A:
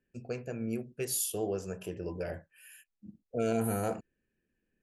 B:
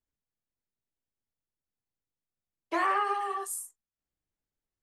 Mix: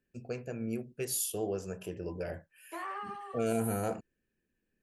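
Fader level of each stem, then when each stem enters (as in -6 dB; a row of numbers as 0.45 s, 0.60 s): -1.0 dB, -12.5 dB; 0.00 s, 0.00 s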